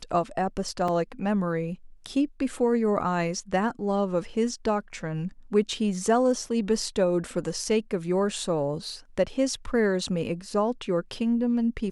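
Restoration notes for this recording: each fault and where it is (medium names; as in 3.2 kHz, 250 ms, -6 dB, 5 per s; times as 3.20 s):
0.88 s: dropout 3.5 ms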